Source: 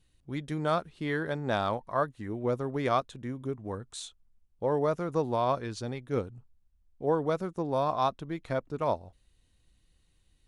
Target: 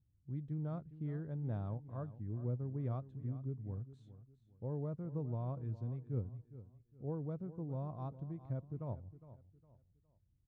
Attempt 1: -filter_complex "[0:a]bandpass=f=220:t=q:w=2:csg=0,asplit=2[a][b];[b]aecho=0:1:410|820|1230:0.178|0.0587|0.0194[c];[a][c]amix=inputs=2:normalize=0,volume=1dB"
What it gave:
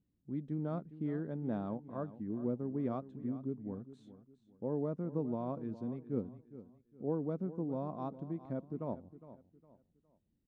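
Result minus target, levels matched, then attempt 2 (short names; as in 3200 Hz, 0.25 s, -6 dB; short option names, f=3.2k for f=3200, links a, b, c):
125 Hz band -6.5 dB
-filter_complex "[0:a]bandpass=f=110:t=q:w=2:csg=0,asplit=2[a][b];[b]aecho=0:1:410|820|1230:0.178|0.0587|0.0194[c];[a][c]amix=inputs=2:normalize=0,volume=1dB"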